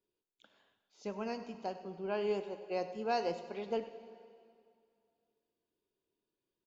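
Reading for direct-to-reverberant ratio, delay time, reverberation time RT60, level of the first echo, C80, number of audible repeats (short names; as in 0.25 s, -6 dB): 10.0 dB, 99 ms, 2.4 s, -16.0 dB, 11.0 dB, 1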